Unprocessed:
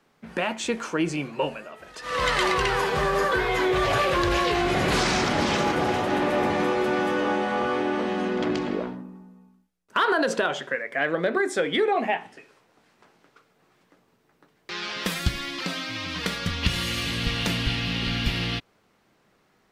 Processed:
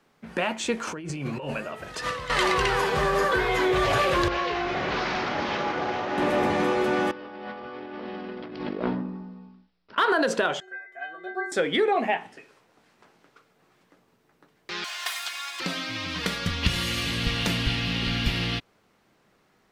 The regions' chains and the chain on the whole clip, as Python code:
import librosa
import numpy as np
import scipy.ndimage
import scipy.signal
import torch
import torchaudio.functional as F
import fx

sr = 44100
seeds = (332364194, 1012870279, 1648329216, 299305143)

y = fx.chain(x, sr, fx.peak_eq(hz=110.0, db=9.0, octaves=1.3),
    fx.over_compress(threshold_db=-32.0, ratio=-1.0), at=(0.87, 2.3))
y = fx.chain(y, sr, fx.cvsd(bps=32000),
    fx.lowpass(hz=2300.0, slope=6),
    fx.low_shelf(hz=380.0, db=-10.5), at=(4.28, 6.18))
y = fx.chain(y, sr, fx.resample_bad(factor=4, down='none', up='filtered'),
    fx.over_compress(threshold_db=-32.0, ratio=-0.5), at=(7.11, 9.98))
y = fx.chain(y, sr, fx.notch(hz=880.0, q=7.6),
    fx.stiff_resonator(f0_hz=370.0, decay_s=0.4, stiffness=0.008),
    fx.small_body(hz=(700.0, 1400.0, 3900.0), ring_ms=20, db=14), at=(10.6, 11.52))
y = fx.chain(y, sr, fx.lower_of_two(delay_ms=2.8),
    fx.highpass(hz=760.0, slope=24), at=(14.84, 15.6))